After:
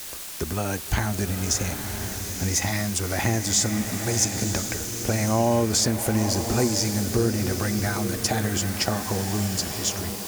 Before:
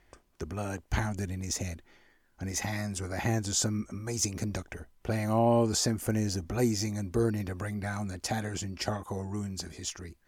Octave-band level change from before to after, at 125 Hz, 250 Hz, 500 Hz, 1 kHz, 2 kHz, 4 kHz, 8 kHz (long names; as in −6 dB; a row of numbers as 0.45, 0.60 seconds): +6.5, +6.0, +5.0, +6.0, +8.5, +10.0, +10.0 decibels